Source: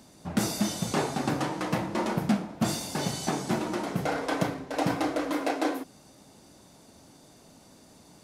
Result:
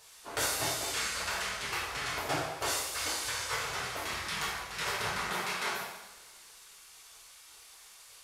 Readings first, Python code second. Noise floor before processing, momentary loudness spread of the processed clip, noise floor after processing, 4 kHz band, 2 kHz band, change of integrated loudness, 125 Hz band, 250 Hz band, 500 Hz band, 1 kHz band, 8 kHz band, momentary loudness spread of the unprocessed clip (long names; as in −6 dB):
−55 dBFS, 20 LU, −55 dBFS, +3.0 dB, +2.5 dB, −3.5 dB, −13.0 dB, −19.0 dB, −9.0 dB, −4.0 dB, +2.5 dB, 3 LU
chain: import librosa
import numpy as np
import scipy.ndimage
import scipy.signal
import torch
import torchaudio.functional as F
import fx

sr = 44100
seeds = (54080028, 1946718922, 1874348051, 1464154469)

y = fx.spec_gate(x, sr, threshold_db=-15, keep='weak')
y = fx.dmg_noise_band(y, sr, seeds[0], low_hz=1900.0, high_hz=12000.0, level_db=-62.0)
y = fx.rev_double_slope(y, sr, seeds[1], early_s=0.91, late_s=3.2, knee_db=-24, drr_db=-5.0)
y = F.gain(torch.from_numpy(y), -2.0).numpy()